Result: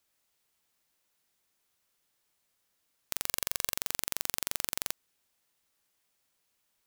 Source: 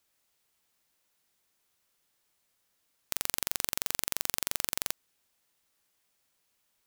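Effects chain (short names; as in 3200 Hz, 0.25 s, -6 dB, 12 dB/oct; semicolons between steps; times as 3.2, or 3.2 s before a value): 3.26–3.77 comb 1.8 ms, depth 52%; gain -1.5 dB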